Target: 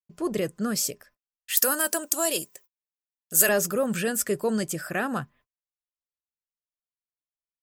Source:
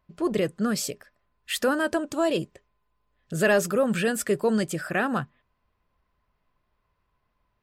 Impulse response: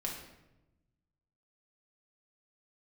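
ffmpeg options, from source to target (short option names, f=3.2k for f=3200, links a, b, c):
-filter_complex "[0:a]aexciter=amount=2.5:drive=5:freq=5.3k,agate=range=-39dB:threshold=-54dB:ratio=16:detection=peak,asettb=1/sr,asplit=3[a][b][c];[a]atrim=end=1.574[d];[b]atrim=start=1.57:end=3.49,asetpts=PTS-STARTPTS,afade=t=in:d=0.004:c=qsin,afade=t=out:st=1.916:d=0.004:c=qsin,aemphasis=mode=production:type=riaa[e];[c]atrim=start=3.486[f];[d][e]acrossfade=d=0.004:c1=hsin:c2=qsin[g];[g][f]acrossfade=d=0.004:c1=qsin:c2=hsin,volume=-2.5dB"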